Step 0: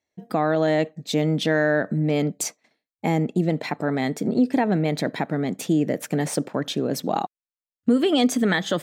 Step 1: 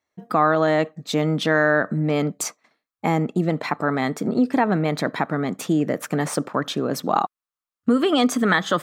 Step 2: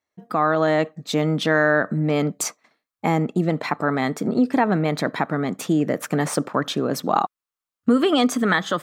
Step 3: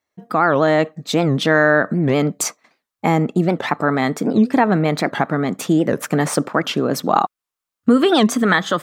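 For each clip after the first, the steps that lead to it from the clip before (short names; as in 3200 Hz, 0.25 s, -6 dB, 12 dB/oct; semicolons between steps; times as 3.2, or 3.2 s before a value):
bell 1200 Hz +12.5 dB 0.68 oct
AGC gain up to 6.5 dB; gain -3.5 dB
record warp 78 rpm, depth 250 cents; gain +4 dB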